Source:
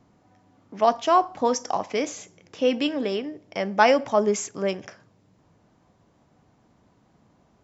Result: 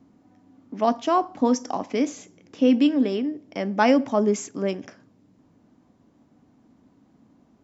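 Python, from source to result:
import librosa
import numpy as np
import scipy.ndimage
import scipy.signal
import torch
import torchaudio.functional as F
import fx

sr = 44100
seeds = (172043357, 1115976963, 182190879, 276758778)

y = fx.peak_eq(x, sr, hz=260.0, db=13.5, octaves=0.75)
y = F.gain(torch.from_numpy(y), -3.5).numpy()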